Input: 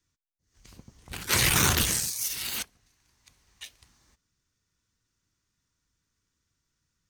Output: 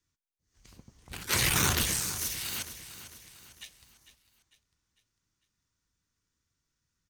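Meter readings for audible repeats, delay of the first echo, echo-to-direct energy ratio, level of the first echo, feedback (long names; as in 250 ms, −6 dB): 4, 450 ms, −12.0 dB, −13.0 dB, 45%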